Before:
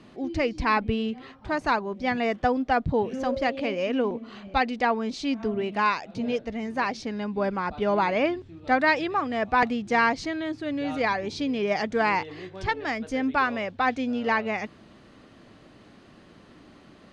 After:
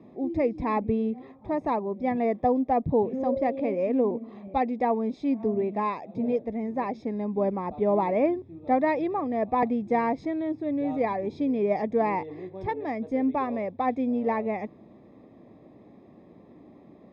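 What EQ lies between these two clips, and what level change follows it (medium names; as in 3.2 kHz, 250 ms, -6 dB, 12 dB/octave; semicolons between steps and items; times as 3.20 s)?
boxcar filter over 30 samples; high-pass 200 Hz 6 dB/octave; +4.0 dB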